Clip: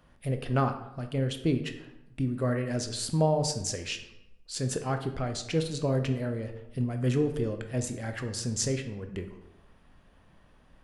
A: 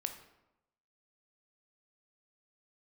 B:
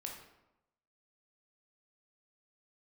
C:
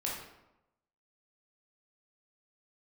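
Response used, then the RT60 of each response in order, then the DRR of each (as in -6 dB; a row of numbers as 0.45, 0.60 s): A; 0.90, 0.95, 0.90 s; 6.0, 0.0, -4.5 dB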